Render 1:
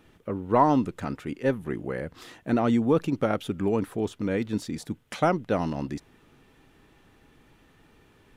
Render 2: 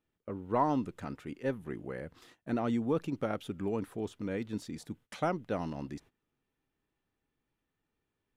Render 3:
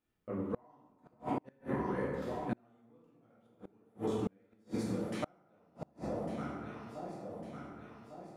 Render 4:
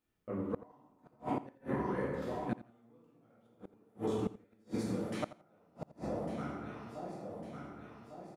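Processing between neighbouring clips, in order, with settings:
noise gate −45 dBFS, range −18 dB; level −8.5 dB
delay that swaps between a low-pass and a high-pass 576 ms, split 930 Hz, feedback 70%, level −8 dB; dense smooth reverb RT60 1.6 s, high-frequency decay 0.5×, DRR −7 dB; gate with flip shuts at −18 dBFS, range −36 dB; level −5 dB
repeating echo 85 ms, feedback 20%, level −16.5 dB

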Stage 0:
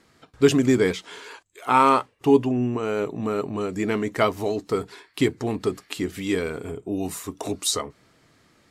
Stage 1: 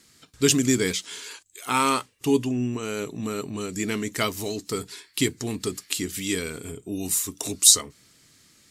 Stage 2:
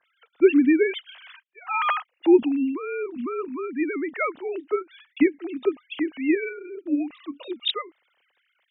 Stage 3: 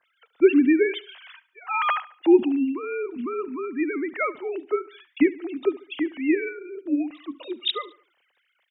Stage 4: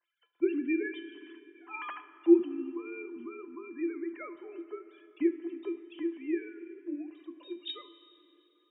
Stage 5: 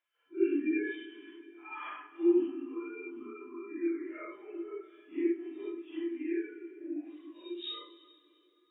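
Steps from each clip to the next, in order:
drawn EQ curve 240 Hz 0 dB, 750 Hz −8 dB, 7,200 Hz +14 dB; level −2 dB
three sine waves on the formant tracks; level +1.5 dB
repeating echo 72 ms, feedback 44%, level −19 dB
high-frequency loss of the air 52 metres; tuned comb filter 340 Hz, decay 0.2 s, harmonics odd, mix 90%; dense smooth reverb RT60 3.7 s, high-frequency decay 0.7×, DRR 12.5 dB
random phases in long frames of 200 ms; level −1 dB

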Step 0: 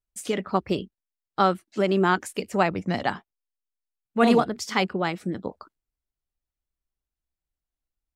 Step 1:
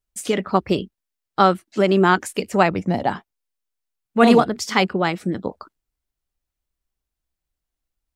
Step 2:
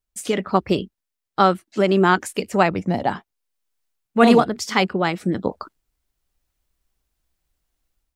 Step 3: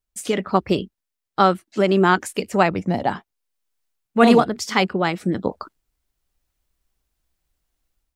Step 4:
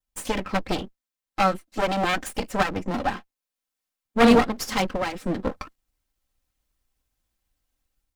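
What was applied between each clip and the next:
gain on a spectral selection 0:02.88–0:03.11, 1,000–9,100 Hz −9 dB; level +5.5 dB
automatic gain control gain up to 9.5 dB; level −1 dB
no processing that can be heard
lower of the sound and its delayed copy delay 3.8 ms; level −1 dB

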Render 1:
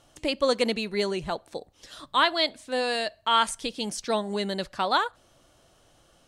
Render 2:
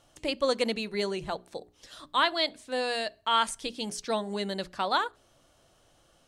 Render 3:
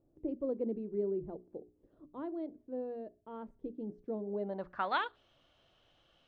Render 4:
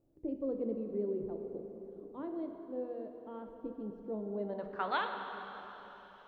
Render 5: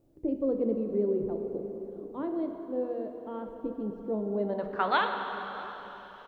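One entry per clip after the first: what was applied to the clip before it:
mains-hum notches 60/120/180/240/300/360/420 Hz; level −3 dB
low-pass filter sweep 360 Hz → 3,200 Hz, 0:04.20–0:05.08; level −7.5 dB
dense smooth reverb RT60 4.1 s, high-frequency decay 0.85×, DRR 4 dB; level −1.5 dB
single-tap delay 659 ms −21.5 dB; level +7.5 dB

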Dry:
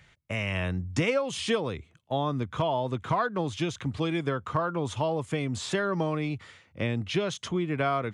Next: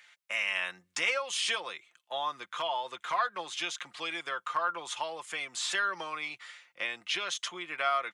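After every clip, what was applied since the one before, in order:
high-pass filter 1,200 Hz 12 dB per octave
comb filter 5.7 ms, depth 44%
level +2.5 dB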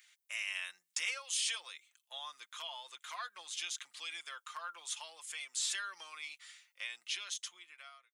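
fade-out on the ending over 1.13 s
first difference
level +1.5 dB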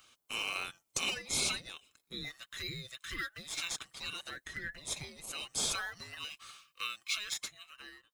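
frequency inversion band by band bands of 1,000 Hz
in parallel at −10.5 dB: sample-and-hold swept by an LFO 15×, swing 160% 0.25 Hz
on the sum: level +2 dB

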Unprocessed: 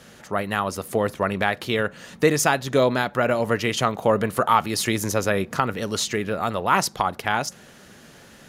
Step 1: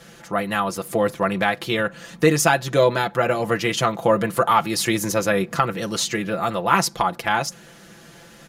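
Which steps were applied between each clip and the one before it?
comb filter 5.9 ms, depth 74%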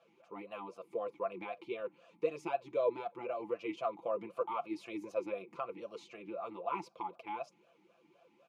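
formant filter swept between two vowels a-u 3.9 Hz
level −8.5 dB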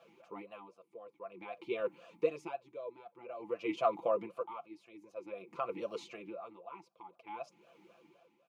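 tremolo with a sine in dB 0.51 Hz, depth 19 dB
level +6 dB

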